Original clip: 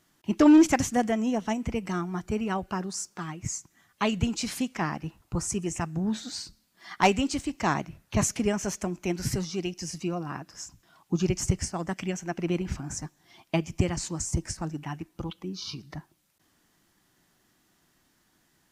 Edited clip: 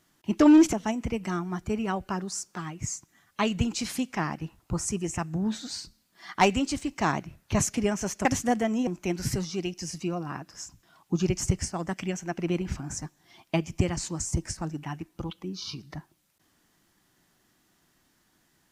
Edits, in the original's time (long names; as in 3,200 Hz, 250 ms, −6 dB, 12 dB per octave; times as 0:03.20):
0:00.73–0:01.35: move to 0:08.87